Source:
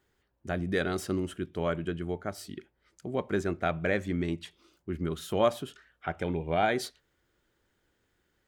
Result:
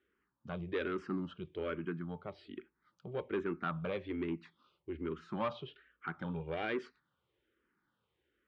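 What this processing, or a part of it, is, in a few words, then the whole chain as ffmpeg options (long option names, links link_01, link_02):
barber-pole phaser into a guitar amplifier: -filter_complex "[0:a]asplit=2[link_01][link_02];[link_02]afreqshift=-1.2[link_03];[link_01][link_03]amix=inputs=2:normalize=1,asoftclip=type=tanh:threshold=-25dB,highpass=84,equalizer=frequency=97:width_type=q:width=4:gain=-9,equalizer=frequency=680:width_type=q:width=4:gain=-10,equalizer=frequency=1200:width_type=q:width=4:gain=5,equalizer=frequency=1900:width_type=q:width=4:gain=-3,lowpass=frequency=3500:width=0.5412,lowpass=frequency=3500:width=1.3066,volume=-2dB"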